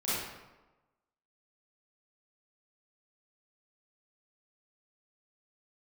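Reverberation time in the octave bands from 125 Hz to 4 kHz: 1.0, 1.1, 1.1, 1.1, 0.90, 0.70 s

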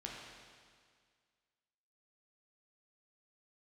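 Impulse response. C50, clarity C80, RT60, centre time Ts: 0.0 dB, 2.0 dB, 1.9 s, 96 ms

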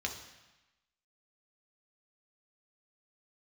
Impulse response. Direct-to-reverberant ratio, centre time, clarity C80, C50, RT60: 1.5 dB, 24 ms, 10.0 dB, 7.5 dB, 1.0 s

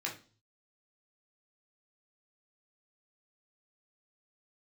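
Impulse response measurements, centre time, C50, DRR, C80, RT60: 21 ms, 10.0 dB, -2.5 dB, 16.5 dB, 0.40 s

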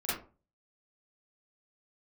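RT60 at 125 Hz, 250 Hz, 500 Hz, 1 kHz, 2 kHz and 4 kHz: 0.50, 0.40, 0.40, 0.35, 0.25, 0.20 s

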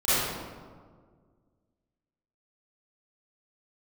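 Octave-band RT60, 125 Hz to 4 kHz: 2.2, 2.2, 1.9, 1.6, 1.1, 0.85 s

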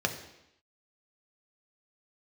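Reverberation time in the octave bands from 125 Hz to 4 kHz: 0.75, 0.85, 0.80, 0.85, 0.85, 0.85 s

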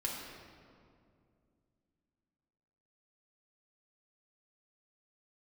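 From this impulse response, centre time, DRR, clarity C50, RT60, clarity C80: 88 ms, -3.5 dB, 1.5 dB, 2.4 s, 3.0 dB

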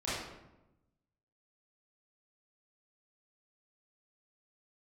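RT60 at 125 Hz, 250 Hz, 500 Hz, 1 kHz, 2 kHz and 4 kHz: 1.4, 1.2, 1.0, 0.90, 0.75, 0.60 s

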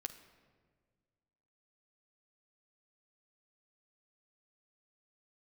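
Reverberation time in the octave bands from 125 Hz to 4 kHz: 2.3, 2.1, 1.9, 1.5, 1.3, 0.95 s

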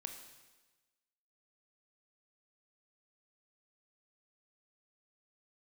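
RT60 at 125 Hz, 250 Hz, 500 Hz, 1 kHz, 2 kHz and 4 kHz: 1.2, 1.2, 1.2, 1.2, 1.2, 1.2 s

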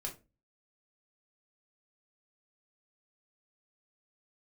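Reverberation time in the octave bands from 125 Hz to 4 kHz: 0.50, 0.40, 0.30, 0.25, 0.25, 0.20 s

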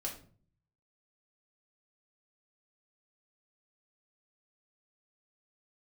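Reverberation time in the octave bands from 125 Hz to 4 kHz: 0.90, 0.70, 0.50, 0.40, 0.35, 0.30 s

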